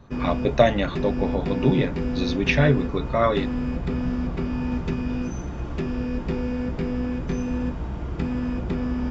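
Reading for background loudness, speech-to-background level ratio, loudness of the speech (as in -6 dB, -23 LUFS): -28.0 LUFS, 4.5 dB, -23.5 LUFS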